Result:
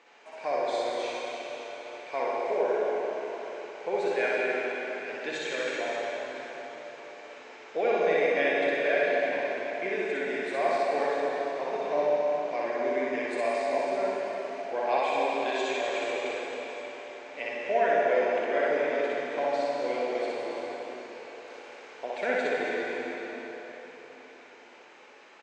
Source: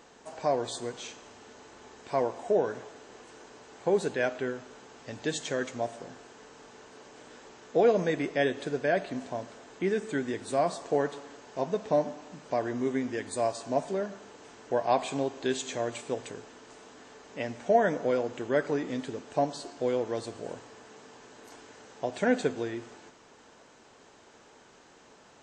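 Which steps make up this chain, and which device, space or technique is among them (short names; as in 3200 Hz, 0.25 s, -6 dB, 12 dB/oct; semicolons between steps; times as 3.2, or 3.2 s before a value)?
station announcement (BPF 410–4500 Hz; bell 2300 Hz +11 dB 0.39 oct; loudspeakers at several distances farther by 21 m -1 dB, 92 m -10 dB; reverb RT60 4.3 s, pre-delay 46 ms, DRR -3.5 dB); gain -4.5 dB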